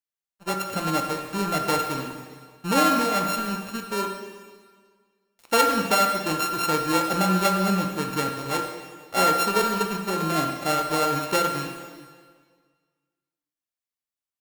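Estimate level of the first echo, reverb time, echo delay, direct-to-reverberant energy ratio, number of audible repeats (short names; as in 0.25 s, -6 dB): none, 1.7 s, none, 3.0 dB, none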